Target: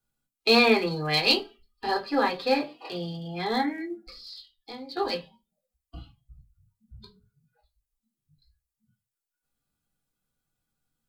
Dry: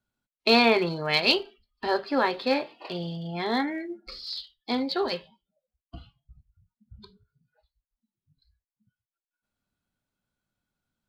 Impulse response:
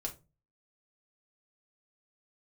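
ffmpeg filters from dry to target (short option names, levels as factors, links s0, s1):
-filter_complex "[0:a]highshelf=f=4800:g=10.5,asettb=1/sr,asplit=3[s0][s1][s2];[s0]atrim=end=4.024[s3];[s1]atrim=start=4.02:end=4.97,asetpts=PTS-STARTPTS,afade=t=in:d=0.004:c=qsin,afade=t=out:st=0.946:d=0.004:c=qsin,acompressor=threshold=0.00562:ratio=2[s4];[s2]atrim=start=4.966[s5];[s3][s4]acrossfade=d=0.004:c1=hsin:c2=qsin[s6];[s6][s5]acrossfade=d=0.004:c1=qsin:c2=hsin[s7];[1:a]atrim=start_sample=2205,asetrate=79380,aresample=44100[s8];[s7][s8]afir=irnorm=-1:irlink=0,volume=1.41"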